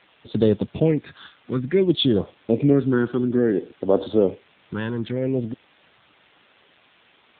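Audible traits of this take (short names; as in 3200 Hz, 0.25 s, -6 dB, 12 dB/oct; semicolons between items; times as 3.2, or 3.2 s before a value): phasing stages 6, 0.57 Hz, lowest notch 600–2200 Hz; tremolo triangle 0.53 Hz, depth 35%; a quantiser's noise floor 8-bit, dither triangular; AMR-NB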